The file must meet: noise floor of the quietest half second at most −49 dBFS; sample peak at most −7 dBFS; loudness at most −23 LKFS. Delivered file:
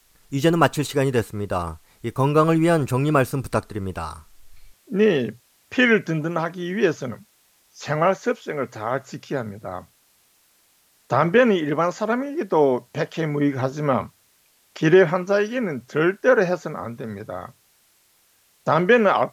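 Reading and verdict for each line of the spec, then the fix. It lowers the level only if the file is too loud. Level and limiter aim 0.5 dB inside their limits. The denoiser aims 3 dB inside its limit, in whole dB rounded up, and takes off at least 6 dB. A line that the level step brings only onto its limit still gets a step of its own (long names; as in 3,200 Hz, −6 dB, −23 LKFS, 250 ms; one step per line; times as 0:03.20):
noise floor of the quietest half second −61 dBFS: in spec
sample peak −3.5 dBFS: out of spec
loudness −21.5 LKFS: out of spec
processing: level −2 dB
brickwall limiter −7.5 dBFS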